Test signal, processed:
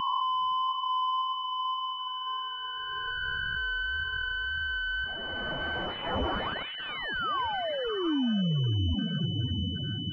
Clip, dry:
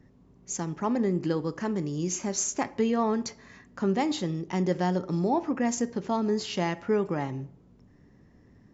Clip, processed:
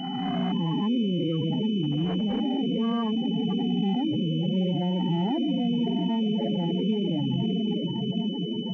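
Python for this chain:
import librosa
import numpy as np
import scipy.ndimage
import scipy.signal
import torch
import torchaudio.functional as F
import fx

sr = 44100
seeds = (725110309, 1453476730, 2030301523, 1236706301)

p1 = fx.spec_swells(x, sr, rise_s=2.99)
p2 = p1 + fx.echo_diffused(p1, sr, ms=709, feedback_pct=69, wet_db=-7.5, dry=0)
p3 = fx.spec_topn(p2, sr, count=8)
p4 = fx.vibrato(p3, sr, rate_hz=1.8, depth_cents=11.0)
p5 = fx.band_shelf(p4, sr, hz=580.0, db=-10.5, octaves=1.7)
p6 = fx.over_compress(p5, sr, threshold_db=-34.0, ratio=-1.0)
p7 = p5 + (p6 * librosa.db_to_amplitude(2.0))
p8 = fx.pwm(p7, sr, carrier_hz=3000.0)
y = p8 * librosa.db_to_amplitude(-1.5)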